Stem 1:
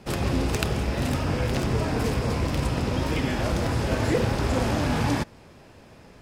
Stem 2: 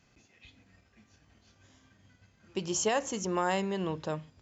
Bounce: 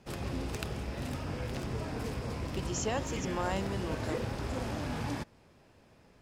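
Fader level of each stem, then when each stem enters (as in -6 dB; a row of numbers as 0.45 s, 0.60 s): -11.5 dB, -5.5 dB; 0.00 s, 0.00 s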